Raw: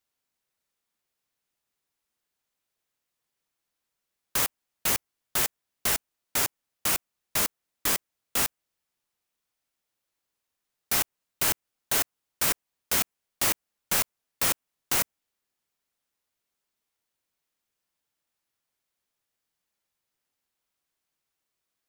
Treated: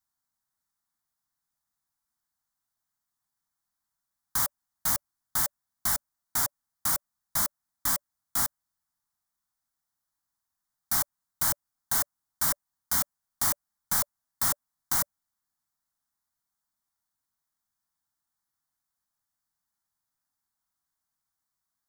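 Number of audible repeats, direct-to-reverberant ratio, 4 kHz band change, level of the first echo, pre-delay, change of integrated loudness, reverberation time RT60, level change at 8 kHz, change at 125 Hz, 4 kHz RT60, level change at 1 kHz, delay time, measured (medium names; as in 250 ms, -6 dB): no echo, no reverb, -6.0 dB, no echo, no reverb, -1.0 dB, no reverb, -1.0 dB, -1.0 dB, no reverb, -1.0 dB, no echo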